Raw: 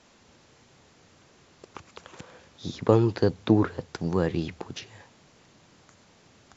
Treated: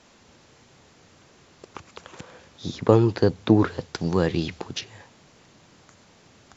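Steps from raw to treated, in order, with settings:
0:03.59–0:04.81: dynamic equaliser 4,300 Hz, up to +6 dB, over −52 dBFS, Q 0.8
level +3 dB

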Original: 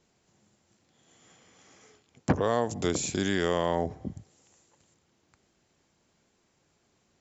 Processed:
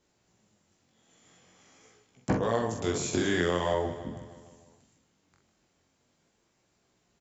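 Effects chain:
double-tracking delay 45 ms −5 dB
chorus effect 0.44 Hz, delay 16 ms, depth 7.1 ms
repeating echo 153 ms, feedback 60%, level −13.5 dB
0:03.13–0:03.74: multiband upward and downward compressor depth 100%

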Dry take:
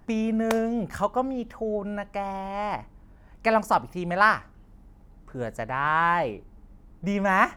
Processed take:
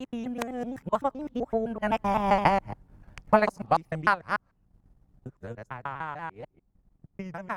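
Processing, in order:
reversed piece by piece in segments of 138 ms
source passing by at 0:02.37, 27 m/s, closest 8.6 metres
parametric band 120 Hz +6.5 dB 0.85 octaves
transient designer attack +7 dB, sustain −9 dB
pitch modulation by a square or saw wave saw down 4.2 Hz, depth 100 cents
level +6.5 dB

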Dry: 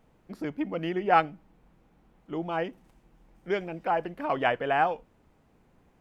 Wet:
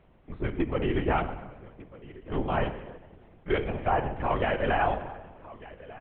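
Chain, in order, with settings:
brickwall limiter −19.5 dBFS, peak gain reduction 11.5 dB
single-tap delay 1,196 ms −19 dB
on a send at −8 dB: convolution reverb RT60 1.3 s, pre-delay 9 ms
on the sum: linear-prediction vocoder at 8 kHz whisper
level +3 dB

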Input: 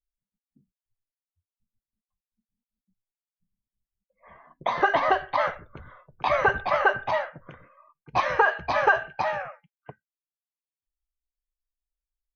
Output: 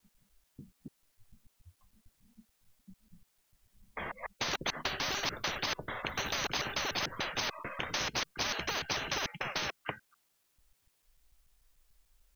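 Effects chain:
slices reordered back to front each 147 ms, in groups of 3
brickwall limiter −14 dBFS, peak gain reduction 5.5 dB
every bin compressed towards the loudest bin 10 to 1
level −4.5 dB

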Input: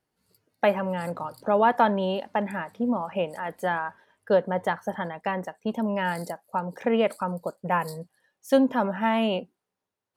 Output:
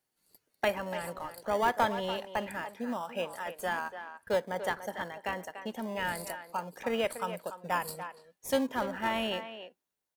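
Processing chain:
spectral tilt +3 dB per octave
notch filter 5,100 Hz, Q 22
in parallel at −11.5 dB: sample-and-hold swept by an LFO 28×, swing 60% 0.24 Hz
on the sum: far-end echo of a speakerphone 290 ms, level −10 dB
level −6.5 dB

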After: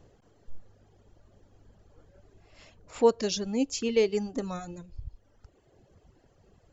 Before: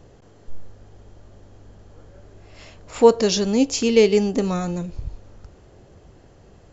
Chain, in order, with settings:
reverb reduction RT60 1.3 s
level −8.5 dB

